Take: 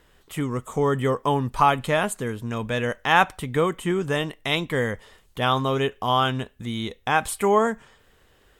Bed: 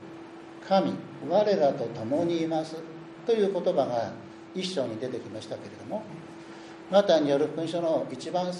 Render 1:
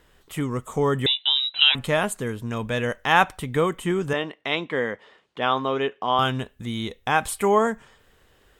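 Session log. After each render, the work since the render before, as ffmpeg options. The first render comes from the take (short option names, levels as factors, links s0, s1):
-filter_complex "[0:a]asettb=1/sr,asplit=3[s0][s1][s2];[s0]atrim=end=1.064[s3];[s1]atrim=start=1.06:end=1.75,asetpts=PTS-STARTPTS,afade=t=in:d=0.004:c=qsin,afade=t=out:st=0.686:d=0.004:c=qsin,lowpass=f=3400:t=q:w=0.5098,lowpass=f=3400:t=q:w=0.6013,lowpass=f=3400:t=q:w=0.9,lowpass=f=3400:t=q:w=2.563,afreqshift=-4000[s4];[s2]atrim=start=1.746[s5];[s3][s4]acrossfade=d=0.004:c1=hsin:c2=qsin[s6];[s6][s5]acrossfade=d=0.004:c1=qsin:c2=hsin,asettb=1/sr,asplit=3[s7][s8][s9];[s7]atrim=end=4.134[s10];[s8]atrim=start=4.13:end=6.19,asetpts=PTS-STARTPTS,afade=t=in:d=0.004:c=qsin,afade=t=out:st=2.056:d=0.004:c=qsin,highpass=240,lowpass=3500[s11];[s9]atrim=start=6.186[s12];[s10][s11]acrossfade=d=0.004:c1=hsin:c2=qsin[s13];[s13][s12]acrossfade=d=0.004:c1=qsin:c2=hsin"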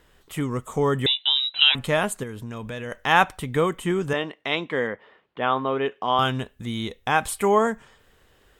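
-filter_complex "[0:a]asettb=1/sr,asplit=3[s0][s1][s2];[s0]atrim=end=2.234[s3];[s1]atrim=start=2.23:end=2.92,asetpts=PTS-STARTPTS,afade=t=in:d=0.004:c=qsin,afade=t=out:st=0.686:d=0.004:c=qsin,acompressor=threshold=0.0316:ratio=4:attack=3.2:release=140:knee=1:detection=peak[s4];[s2]atrim=start=2.916[s5];[s3][s4]acrossfade=d=0.004:c1=hsin:c2=qsin[s6];[s6][s5]acrossfade=d=0.004:c1=qsin:c2=hsin,asettb=1/sr,asplit=3[s7][s8][s9];[s7]atrim=end=4.874[s10];[s8]atrim=start=4.87:end=5.86,asetpts=PTS-STARTPTS,afade=t=in:d=0.004:c=qsin,afade=t=out:st=0.986:d=0.004:c=qsin,lowpass=2600[s11];[s9]atrim=start=5.856[s12];[s10][s11]acrossfade=d=0.004:c1=hsin:c2=qsin[s13];[s13][s12]acrossfade=d=0.004:c1=qsin:c2=hsin"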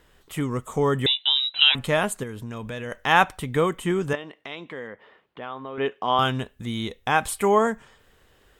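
-filter_complex "[0:a]asettb=1/sr,asplit=3[s0][s1][s2];[s0]atrim=end=4.154[s3];[s1]atrim=start=4.15:end=5.78,asetpts=PTS-STARTPTS,afade=t=in:d=0.004:c=qsin,afade=t=out:st=1.626:d=0.004:c=qsin,acompressor=threshold=0.01:ratio=2:attack=3.2:release=140:knee=1:detection=peak[s4];[s2]atrim=start=5.776[s5];[s3][s4]acrossfade=d=0.004:c1=hsin:c2=qsin[s6];[s6][s5]acrossfade=d=0.004:c1=qsin:c2=hsin"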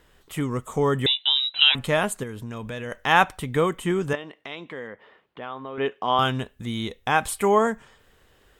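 -af anull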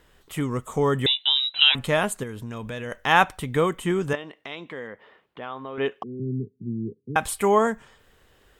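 -filter_complex "[0:a]asettb=1/sr,asplit=3[s0][s1][s2];[s0]atrim=end=6.034[s3];[s1]atrim=start=6.03:end=7.16,asetpts=PTS-STARTPTS,afade=t=in:d=0.004:c=qsin,afade=t=out:st=1.126:d=0.004:c=qsin,asuperpass=centerf=210:order=20:qfactor=0.64[s4];[s2]atrim=start=7.156[s5];[s3][s4]acrossfade=d=0.004:c1=hsin:c2=qsin[s6];[s6][s5]acrossfade=d=0.004:c1=qsin:c2=hsin"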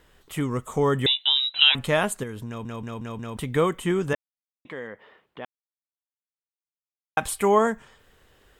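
-filter_complex "[0:a]asplit=10[s0][s1][s2][s3][s4][s5][s6][s7][s8][s9];[s0]atrim=end=2.652[s10];[s1]atrim=start=2.468:end=2.652[s11];[s2]atrim=start=2.468:end=2.652[s12];[s3]atrim=start=2.468:end=2.652[s13];[s4]atrim=start=2.468:end=2.652[s14];[s5]atrim=start=3.368:end=4.15,asetpts=PTS-STARTPTS,afade=t=out:st=0.778:d=0.004:c=hsin[s15];[s6]atrim=start=4.15:end=4.65,asetpts=PTS-STARTPTS,volume=0[s16];[s7]atrim=start=4.65:end=5.45,asetpts=PTS-STARTPTS,afade=t=in:d=0.004:c=hsin,afade=t=out:st=0.796:d=0.004:c=hsin[s17];[s8]atrim=start=5.45:end=7.17,asetpts=PTS-STARTPTS,volume=0[s18];[s9]atrim=start=7.17,asetpts=PTS-STARTPTS,afade=t=in:d=0.004:c=hsin[s19];[s10][s11]acrossfade=d=0.004:c1=hsin:c2=hsin[s20];[s20][s12]acrossfade=d=0.004:c1=hsin:c2=hsin[s21];[s21][s13]acrossfade=d=0.004:c1=hsin:c2=hsin[s22];[s22][s14]acrossfade=d=0.004:c1=hsin:c2=hsin[s23];[s15][s16][s17][s18][s19]concat=n=5:v=0:a=1[s24];[s23][s24]acrossfade=d=0.004:c1=hsin:c2=hsin"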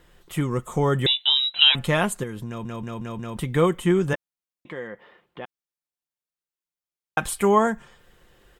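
-af "lowshelf=f=410:g=3,aecho=1:1:5.7:0.38"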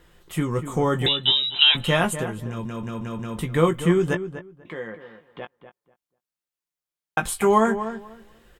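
-filter_complex "[0:a]asplit=2[s0][s1];[s1]adelay=18,volume=0.422[s2];[s0][s2]amix=inputs=2:normalize=0,asplit=2[s3][s4];[s4]adelay=245,lowpass=f=1900:p=1,volume=0.299,asplit=2[s5][s6];[s6]adelay=245,lowpass=f=1900:p=1,volume=0.19,asplit=2[s7][s8];[s8]adelay=245,lowpass=f=1900:p=1,volume=0.19[s9];[s3][s5][s7][s9]amix=inputs=4:normalize=0"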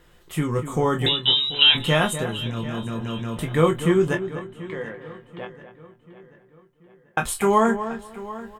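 -filter_complex "[0:a]asplit=2[s0][s1];[s1]adelay=26,volume=0.398[s2];[s0][s2]amix=inputs=2:normalize=0,asplit=2[s3][s4];[s4]adelay=736,lowpass=f=4200:p=1,volume=0.15,asplit=2[s5][s6];[s6]adelay=736,lowpass=f=4200:p=1,volume=0.48,asplit=2[s7][s8];[s8]adelay=736,lowpass=f=4200:p=1,volume=0.48,asplit=2[s9][s10];[s10]adelay=736,lowpass=f=4200:p=1,volume=0.48[s11];[s3][s5][s7][s9][s11]amix=inputs=5:normalize=0"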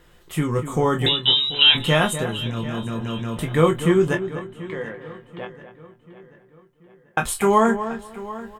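-af "volume=1.19,alimiter=limit=0.708:level=0:latency=1"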